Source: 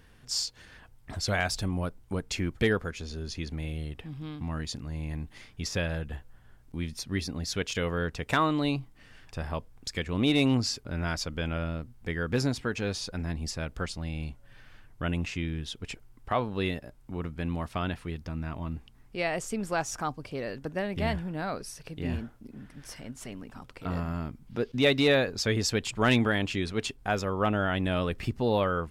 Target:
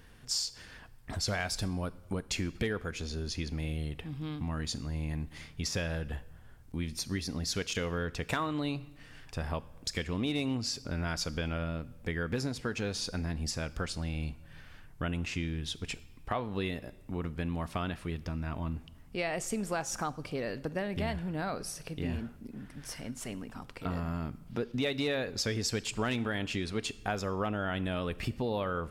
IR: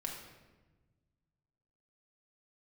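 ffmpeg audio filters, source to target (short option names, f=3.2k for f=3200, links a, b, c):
-filter_complex "[0:a]acompressor=threshold=-31dB:ratio=4,asplit=2[a][b];[1:a]atrim=start_sample=2205,highshelf=f=4.3k:g=11.5[c];[b][c]afir=irnorm=-1:irlink=0,volume=-15dB[d];[a][d]amix=inputs=2:normalize=0"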